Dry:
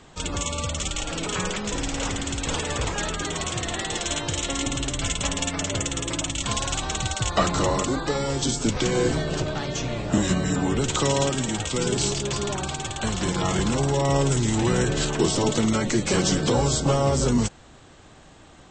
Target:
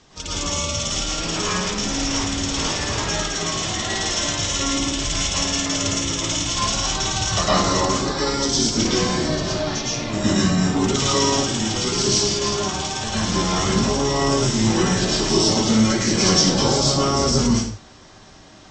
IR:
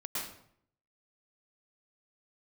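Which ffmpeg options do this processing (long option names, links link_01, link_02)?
-filter_complex "[0:a]lowpass=frequency=5600:width_type=q:width=3.9[link_01];[1:a]atrim=start_sample=2205,afade=type=out:start_time=0.36:duration=0.01,atrim=end_sample=16317[link_02];[link_01][link_02]afir=irnorm=-1:irlink=0"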